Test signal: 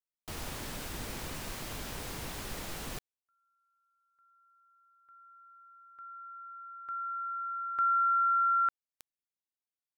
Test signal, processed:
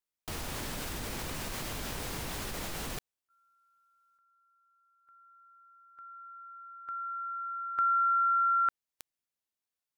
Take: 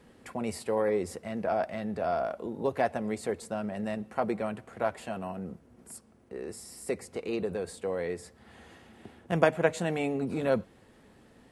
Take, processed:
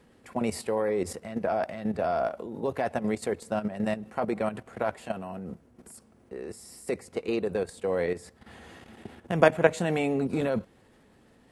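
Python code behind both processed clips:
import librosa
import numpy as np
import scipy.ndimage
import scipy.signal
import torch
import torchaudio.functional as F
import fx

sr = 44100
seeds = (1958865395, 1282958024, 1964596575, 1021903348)

y = fx.level_steps(x, sr, step_db=11)
y = F.gain(torch.from_numpy(y), 6.5).numpy()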